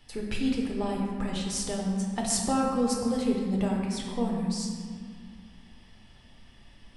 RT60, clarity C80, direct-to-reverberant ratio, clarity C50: 2.0 s, 3.0 dB, −2.0 dB, 1.5 dB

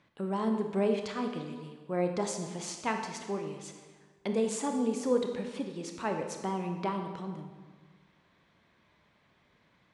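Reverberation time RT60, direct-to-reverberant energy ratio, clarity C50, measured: 1.5 s, 4.0 dB, 6.0 dB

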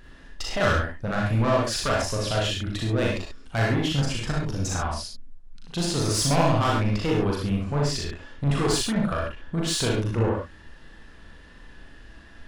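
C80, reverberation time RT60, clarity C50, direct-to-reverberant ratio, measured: 6.5 dB, non-exponential decay, 0.5 dB, −3.5 dB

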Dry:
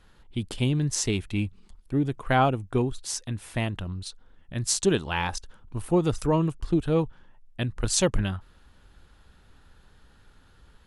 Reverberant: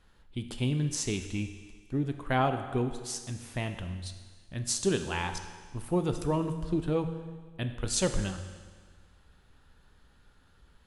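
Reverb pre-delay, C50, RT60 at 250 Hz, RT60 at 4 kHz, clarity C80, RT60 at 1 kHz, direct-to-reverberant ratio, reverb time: 9 ms, 9.0 dB, 1.6 s, 1.6 s, 10.0 dB, 1.6 s, 7.0 dB, 1.6 s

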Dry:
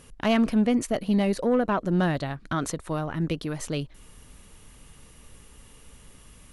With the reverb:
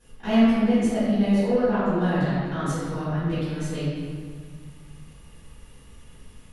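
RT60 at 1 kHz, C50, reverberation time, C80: 1.9 s, −4.0 dB, 1.9 s, −1.0 dB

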